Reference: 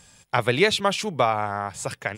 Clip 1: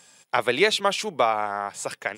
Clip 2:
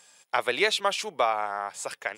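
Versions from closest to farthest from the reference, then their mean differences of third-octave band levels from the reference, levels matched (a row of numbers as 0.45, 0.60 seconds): 1, 2; 2.5, 4.5 decibels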